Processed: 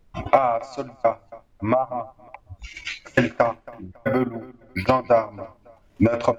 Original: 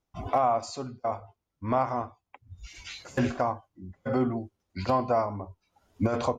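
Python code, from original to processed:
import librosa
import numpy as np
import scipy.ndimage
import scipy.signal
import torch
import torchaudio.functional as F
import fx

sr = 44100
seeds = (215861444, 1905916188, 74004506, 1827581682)

p1 = fx.spec_expand(x, sr, power=2.2, at=(1.73, 2.55), fade=0.02)
p2 = fx.peak_eq(p1, sr, hz=2200.0, db=10.5, octaves=1.1)
p3 = fx.transient(p2, sr, attack_db=8, sustain_db=-11)
p4 = fx.small_body(p3, sr, hz=(320.0, 580.0), ring_ms=90, db=11)
p5 = fx.dmg_noise_colour(p4, sr, seeds[0], colour='brown', level_db=-58.0)
p6 = p5 + fx.echo_feedback(p5, sr, ms=276, feedback_pct=28, wet_db=-21.5, dry=0)
y = fx.resample_linear(p6, sr, factor=3, at=(3.54, 4.87))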